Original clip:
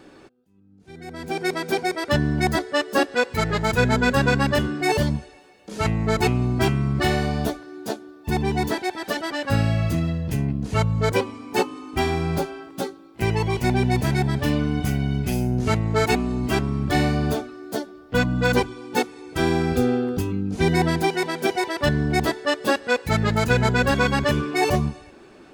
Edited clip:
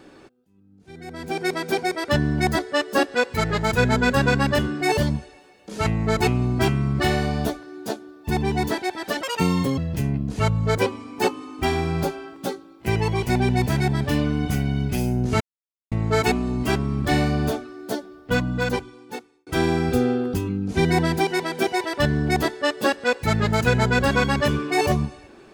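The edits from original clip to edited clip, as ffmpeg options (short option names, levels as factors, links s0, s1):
-filter_complex "[0:a]asplit=5[s0][s1][s2][s3][s4];[s0]atrim=end=9.234[s5];[s1]atrim=start=9.23:end=10.12,asetpts=PTS-STARTPTS,asetrate=71883,aresample=44100,atrim=end_sample=24079,asetpts=PTS-STARTPTS[s6];[s2]atrim=start=10.116:end=15.75,asetpts=PTS-STARTPTS,afade=t=out:st=5.63:d=0.004:c=hsin,apad=pad_dur=0.51[s7];[s3]atrim=start=15.75:end=19.3,asetpts=PTS-STARTPTS,afade=t=in:d=0.004:c=hsin,afade=t=out:st=2.28:d=1.27[s8];[s4]atrim=start=19.3,asetpts=PTS-STARTPTS,afade=t=in:d=0.004:c=hsin[s9];[s5][s6]acrossfade=d=0.004:c1=hsin:c2=hsin[s10];[s7][s8][s9]concat=n=3:v=0:a=1[s11];[s10][s11]acrossfade=d=0.004:c1=hsin:c2=hsin"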